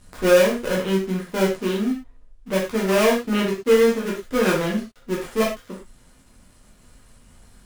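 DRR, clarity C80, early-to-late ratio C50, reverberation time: -4.5 dB, 11.0 dB, 5.0 dB, no single decay rate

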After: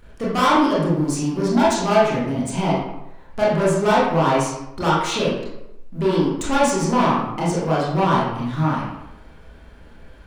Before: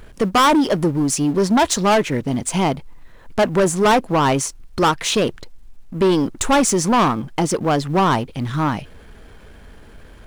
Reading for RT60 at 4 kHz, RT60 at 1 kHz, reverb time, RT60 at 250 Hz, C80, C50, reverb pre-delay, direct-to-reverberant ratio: 0.55 s, 0.90 s, 0.90 s, 0.85 s, 4.0 dB, 1.0 dB, 23 ms, -7.5 dB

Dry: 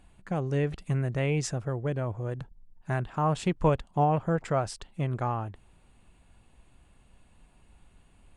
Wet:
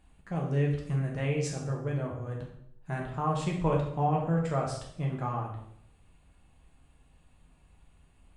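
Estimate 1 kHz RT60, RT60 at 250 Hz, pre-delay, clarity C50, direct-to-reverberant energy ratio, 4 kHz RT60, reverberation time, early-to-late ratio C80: 0.65 s, 0.85 s, 6 ms, 5.0 dB, -1.5 dB, 0.60 s, 0.70 s, 8.0 dB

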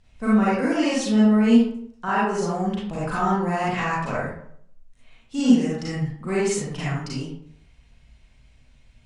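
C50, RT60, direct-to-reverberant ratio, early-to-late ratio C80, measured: -2.0 dB, 0.65 s, -8.5 dB, 4.0 dB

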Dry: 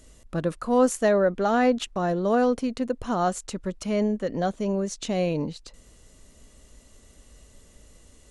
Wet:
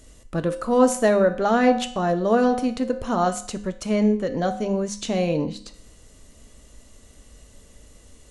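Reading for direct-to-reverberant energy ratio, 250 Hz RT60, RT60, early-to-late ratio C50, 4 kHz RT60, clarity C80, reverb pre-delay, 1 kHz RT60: 8.5 dB, 0.60 s, 0.60 s, 13.5 dB, 0.55 s, 16.5 dB, 4 ms, 0.60 s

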